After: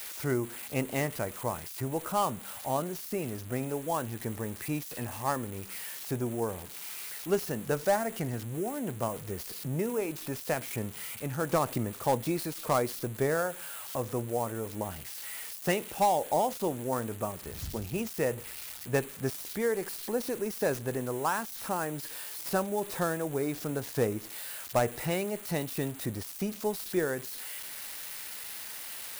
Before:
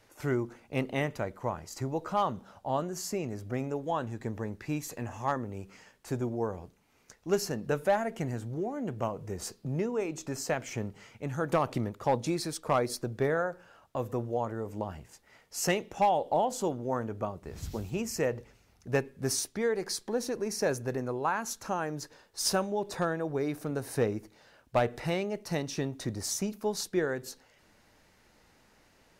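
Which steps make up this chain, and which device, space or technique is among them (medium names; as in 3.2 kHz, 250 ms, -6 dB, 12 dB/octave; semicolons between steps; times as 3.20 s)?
budget class-D amplifier (dead-time distortion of 0.1 ms; zero-crossing glitches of -26 dBFS)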